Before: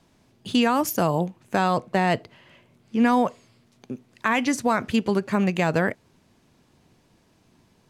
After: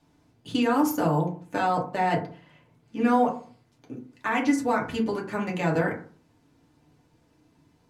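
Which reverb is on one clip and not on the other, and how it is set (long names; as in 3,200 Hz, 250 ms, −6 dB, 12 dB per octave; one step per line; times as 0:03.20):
feedback delay network reverb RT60 0.43 s, low-frequency decay 1.25×, high-frequency decay 0.4×, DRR −3 dB
level −8.5 dB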